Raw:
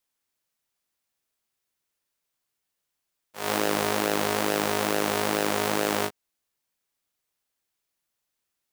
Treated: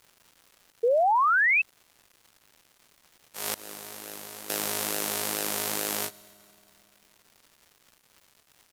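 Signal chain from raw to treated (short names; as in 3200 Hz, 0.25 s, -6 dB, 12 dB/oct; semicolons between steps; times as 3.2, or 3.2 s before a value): 3.54–4.5 expander -14 dBFS; pre-emphasis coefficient 0.8; in parallel at +2.5 dB: compressor, threshold -46 dBFS, peak gain reduction 17 dB; on the sum: downsampling 32000 Hz; crackle 370/s -47 dBFS; on a send at -18.5 dB: reverb RT60 3.2 s, pre-delay 3 ms; 0.83–1.62 on the sum: painted sound rise 450–2700 Hz -24 dBFS; gain +2.5 dB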